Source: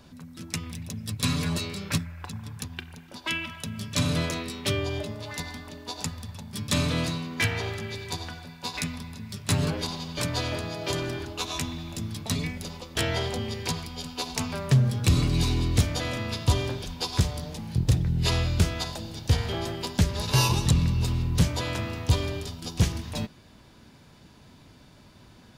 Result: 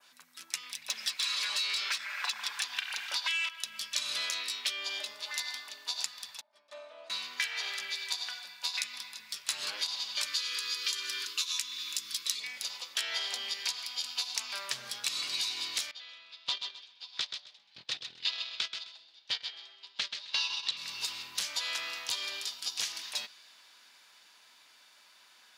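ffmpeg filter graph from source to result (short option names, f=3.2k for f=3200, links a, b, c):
-filter_complex "[0:a]asettb=1/sr,asplit=3[a][b][c];[a]atrim=end=0.884[d];[b]atrim=start=0.88:end=3.49,asetpts=PTS-STARTPTS,afade=t=in:d=0.004:c=qsin,afade=t=out:st=2.606:d=0.004:c=qsin,lowshelf=f=84:g=-11.5,acompressor=threshold=-31dB:ratio=10:attack=3.2:release=140:knee=1:detection=peak,asplit=2[e][f];[f]highpass=f=720:p=1,volume=23dB,asoftclip=type=tanh:threshold=-15.5dB[g];[e][g]amix=inputs=2:normalize=0,lowpass=f=4.3k:p=1,volume=-6dB[h];[c]atrim=start=3.486[i];[d][h]acrossfade=d=0.004:c1=hsin:c2=qsin[j];[j][i]acrossfade=d=0.004:c1=qsin:c2=hsin,asettb=1/sr,asplit=3[k][l][m];[k]atrim=end=6.414[n];[l]atrim=start=6.41:end=7.1,asetpts=PTS-STARTPTS,afade=t=in:d=0.004:c=qsin,afade=t=out:st=0.686:d=0.004:c=qsin,bandpass=f=620:t=q:w=5.3,aecho=1:1:3.3:0.54,atrim=end_sample=30429[o];[m]atrim=start=7.096[p];[n][o]acrossfade=d=0.004:c1=hsin:c2=qsin[q];[q][p]acrossfade=d=0.004:c1=qsin:c2=hsin,asettb=1/sr,asplit=3[r][s][t];[r]atrim=end=10.264[u];[s]atrim=start=10.26:end=12.4,asetpts=PTS-STARTPTS,afade=t=in:d=0.004:c=qsin,afade=t=out:st=2.136:d=0.004:c=qsin,asuperstop=centerf=750:order=20:qfactor=1.8,highshelf=f=3.7k:g=7.5[v];[t]atrim=start=12.396[w];[u][v]acrossfade=d=0.004:c1=hsin:c2=qsin[x];[x][w]acrossfade=d=0.004:c1=qsin:c2=hsin,asettb=1/sr,asplit=3[y][z][aa];[y]atrim=end=15.914[ab];[z]atrim=start=15.91:end=20.77,asetpts=PTS-STARTPTS,afade=t=in:d=0.004:c=qsin,afade=t=out:st=4.856:d=0.004:c=qsin,agate=range=-21dB:threshold=-24dB:ratio=16:release=100:detection=peak,lowpass=f=3.7k:t=q:w=1.9,aecho=1:1:130|260|390:0.299|0.0567|0.0108,atrim=end_sample=214326[ac];[aa]atrim=start=20.766[ad];[ab][ac]acrossfade=d=0.004:c1=hsin:c2=qsin[ae];[ae][ad]acrossfade=d=0.004:c1=qsin:c2=hsin,highpass=1.4k,adynamicequalizer=threshold=0.00562:dfrequency=4500:dqfactor=0.93:tfrequency=4500:tqfactor=0.93:attack=5:release=100:ratio=0.375:range=3.5:mode=boostabove:tftype=bell,acompressor=threshold=-31dB:ratio=6,volume=1dB"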